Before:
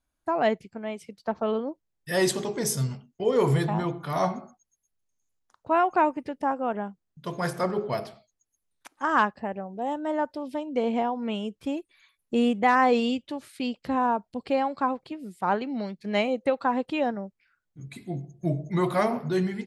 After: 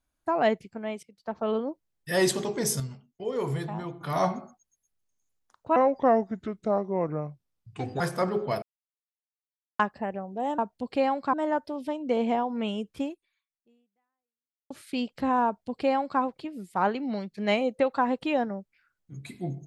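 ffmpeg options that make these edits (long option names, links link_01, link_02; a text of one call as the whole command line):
ffmpeg -i in.wav -filter_complex "[0:a]asplit=11[link_01][link_02][link_03][link_04][link_05][link_06][link_07][link_08][link_09][link_10][link_11];[link_01]atrim=end=1.03,asetpts=PTS-STARTPTS,afade=type=out:start_time=1.026:duration=0.004:curve=hsin:silence=0.11885[link_12];[link_02]atrim=start=1.03:end=2.802,asetpts=PTS-STARTPTS,afade=type=in:duration=0.53:silence=0.11885[link_13];[link_03]atrim=start=2.798:end=4.012,asetpts=PTS-STARTPTS,volume=-7.5dB[link_14];[link_04]atrim=start=4.008:end=5.764[link_15];[link_05]atrim=start=5.76:end=7.42,asetpts=PTS-STARTPTS,asetrate=32634,aresample=44100,atrim=end_sample=98927,asetpts=PTS-STARTPTS[link_16];[link_06]atrim=start=7.416:end=8.04,asetpts=PTS-STARTPTS,afade=type=out:start_time=0.62:duration=0.004:curve=hsin[link_17];[link_07]atrim=start=8.04:end=9.21,asetpts=PTS-STARTPTS,volume=0[link_18];[link_08]atrim=start=9.21:end=10.002,asetpts=PTS-STARTPTS,afade=type=in:duration=0.004:curve=hsin[link_19];[link_09]atrim=start=14.118:end=14.872[link_20];[link_10]atrim=start=9.998:end=13.37,asetpts=PTS-STARTPTS,afade=type=out:start_time=1.682:duration=1.69:curve=exp[link_21];[link_11]atrim=start=13.37,asetpts=PTS-STARTPTS,afade=type=in:duration=0.004:curve=hsin[link_22];[link_12][link_13]concat=n=2:v=0:a=1[link_23];[link_23][link_14]acrossfade=duration=0.004:curve1=hsin:curve2=hsin[link_24];[link_24][link_15]acrossfade=duration=0.004:curve1=hsin:curve2=hsin[link_25];[link_25][link_16]acrossfade=duration=0.004:curve1=hsin:curve2=hsin[link_26];[link_17][link_18][link_19]concat=n=3:v=0:a=1[link_27];[link_26][link_27]acrossfade=duration=0.004:curve1=hsin:curve2=hsin[link_28];[link_28][link_20]acrossfade=duration=0.004:curve1=hsin:curve2=hsin[link_29];[link_21][link_22]concat=n=2:v=0:a=1[link_30];[link_29][link_30]acrossfade=duration=0.004:curve1=hsin:curve2=hsin" out.wav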